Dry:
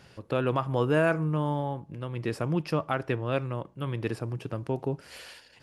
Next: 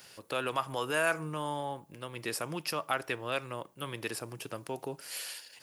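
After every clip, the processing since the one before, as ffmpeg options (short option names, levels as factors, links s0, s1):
-filter_complex "[0:a]aemphasis=mode=production:type=riaa,acrossover=split=680|1500[s0][s1][s2];[s0]alimiter=level_in=1.68:limit=0.0631:level=0:latency=1:release=125,volume=0.596[s3];[s3][s1][s2]amix=inputs=3:normalize=0,volume=0.841"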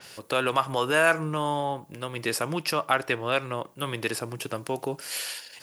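-af "adynamicequalizer=threshold=0.00282:dfrequency=5000:dqfactor=0.7:tfrequency=5000:tqfactor=0.7:attack=5:release=100:ratio=0.375:range=2.5:mode=cutabove:tftype=highshelf,volume=2.51"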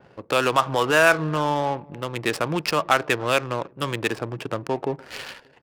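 -af "aecho=1:1:291|582:0.0631|0.024,adynamicsmooth=sensitivity=6:basefreq=570,volume=1.68"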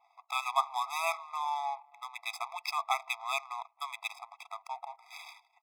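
-af "afftfilt=real='re*eq(mod(floor(b*sr/1024/660),2),1)':imag='im*eq(mod(floor(b*sr/1024/660),2),1)':win_size=1024:overlap=0.75,volume=0.422"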